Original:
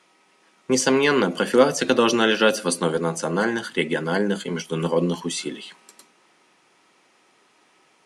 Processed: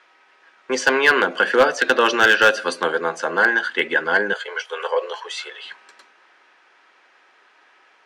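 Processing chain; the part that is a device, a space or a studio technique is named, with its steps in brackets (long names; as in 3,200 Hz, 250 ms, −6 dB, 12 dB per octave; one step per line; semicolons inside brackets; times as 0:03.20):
megaphone (band-pass filter 500–3,900 Hz; parametric band 1,600 Hz +10 dB 0.31 octaves; hard clipping −10.5 dBFS, distortion −18 dB)
0:04.33–0:05.64: elliptic high-pass filter 450 Hz, stop band 50 dB
level +4 dB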